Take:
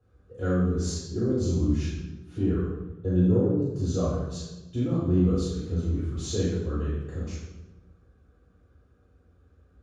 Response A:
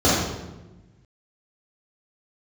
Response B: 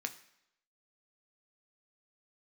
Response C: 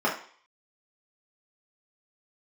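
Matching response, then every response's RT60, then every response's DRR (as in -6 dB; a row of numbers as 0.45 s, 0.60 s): A; 1.1 s, 0.80 s, 0.50 s; -10.0 dB, 6.0 dB, -5.0 dB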